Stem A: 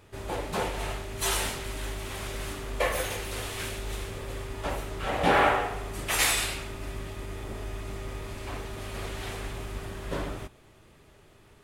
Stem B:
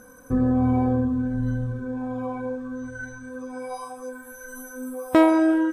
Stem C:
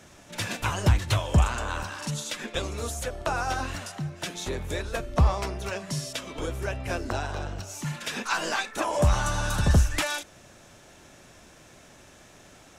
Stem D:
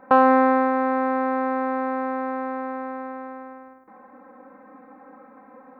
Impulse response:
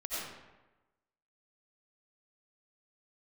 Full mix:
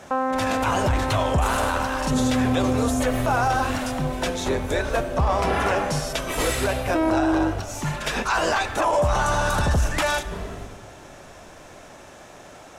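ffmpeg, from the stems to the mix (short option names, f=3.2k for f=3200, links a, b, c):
-filter_complex "[0:a]lowshelf=f=160:g=9.5,asplit=2[a][b];[b]adelay=2.7,afreqshift=1[c];[a][c]amix=inputs=2:normalize=1,adelay=200,volume=-4dB,asplit=2[d][e];[e]volume=-3.5dB[f];[1:a]adelay=1800,volume=-0.5dB[g];[2:a]equalizer=f=760:t=o:w=2.2:g=8.5,volume=2.5dB,asplit=2[h][i];[i]volume=-18.5dB[j];[3:a]volume=-4dB[k];[4:a]atrim=start_sample=2205[l];[f][j]amix=inputs=2:normalize=0[m];[m][l]afir=irnorm=-1:irlink=0[n];[d][g][h][k][n]amix=inputs=5:normalize=0,alimiter=limit=-13dB:level=0:latency=1:release=12"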